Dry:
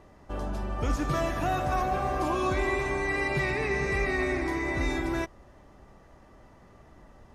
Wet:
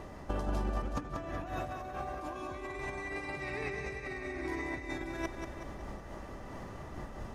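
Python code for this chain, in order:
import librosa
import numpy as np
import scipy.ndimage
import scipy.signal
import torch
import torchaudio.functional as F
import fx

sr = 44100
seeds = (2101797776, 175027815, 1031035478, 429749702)

y = fx.over_compress(x, sr, threshold_db=-35.0, ratio=-0.5)
y = fx.high_shelf(y, sr, hz=3600.0, db=-11.5, at=(0.82, 1.47))
y = fx.echo_feedback(y, sr, ms=186, feedback_pct=56, wet_db=-7.0)
y = fx.am_noise(y, sr, seeds[0], hz=5.7, depth_pct=50)
y = F.gain(torch.from_numpy(y), 1.5).numpy()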